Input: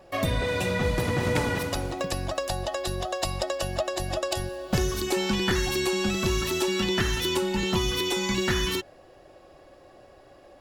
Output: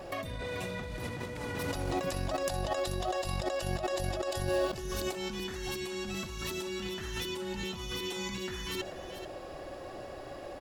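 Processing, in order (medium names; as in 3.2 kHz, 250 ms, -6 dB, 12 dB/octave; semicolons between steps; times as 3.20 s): compressor with a negative ratio -36 dBFS, ratio -1; on a send: delay 435 ms -11 dB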